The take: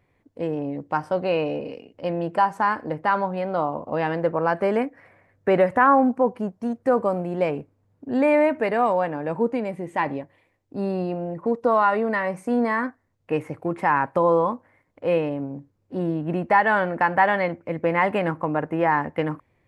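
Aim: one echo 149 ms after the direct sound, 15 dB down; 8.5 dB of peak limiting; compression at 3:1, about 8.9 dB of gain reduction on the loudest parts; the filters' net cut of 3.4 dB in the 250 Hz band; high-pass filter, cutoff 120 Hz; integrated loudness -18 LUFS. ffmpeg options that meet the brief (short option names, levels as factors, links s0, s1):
-af "highpass=120,equalizer=f=250:t=o:g=-4,acompressor=threshold=0.0562:ratio=3,alimiter=limit=0.1:level=0:latency=1,aecho=1:1:149:0.178,volume=4.73"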